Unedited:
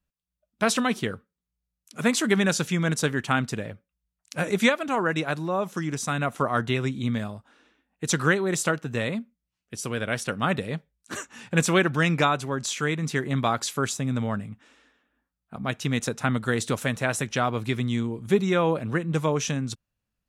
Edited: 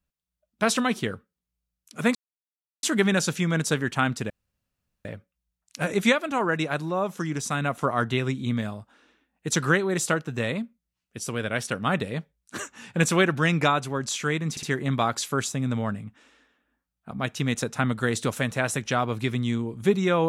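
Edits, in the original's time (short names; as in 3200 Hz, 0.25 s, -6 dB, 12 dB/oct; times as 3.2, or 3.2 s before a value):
2.15 insert silence 0.68 s
3.62 insert room tone 0.75 s
13.08 stutter 0.06 s, 3 plays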